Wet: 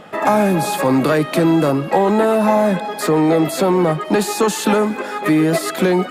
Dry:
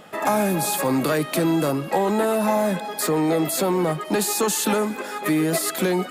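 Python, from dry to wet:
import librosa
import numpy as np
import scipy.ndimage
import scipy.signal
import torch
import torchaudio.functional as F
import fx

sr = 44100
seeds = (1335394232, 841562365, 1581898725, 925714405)

y = fx.lowpass(x, sr, hz=3000.0, slope=6)
y = y * librosa.db_to_amplitude(6.5)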